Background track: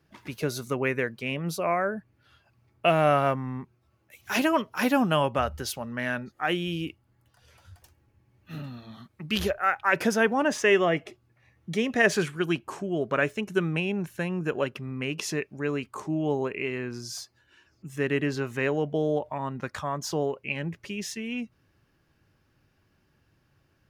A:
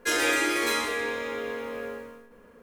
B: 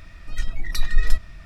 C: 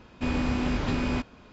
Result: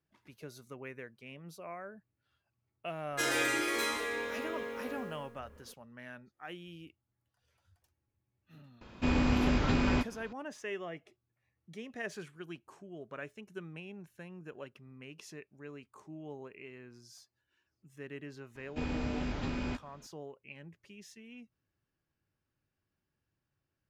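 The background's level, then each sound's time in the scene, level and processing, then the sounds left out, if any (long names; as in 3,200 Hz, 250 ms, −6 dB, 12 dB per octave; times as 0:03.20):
background track −18.5 dB
0:03.12: mix in A −6.5 dB
0:08.81: mix in C −1 dB
0:18.55: mix in C −8.5 dB + notch filter 1,100 Hz, Q 11
not used: B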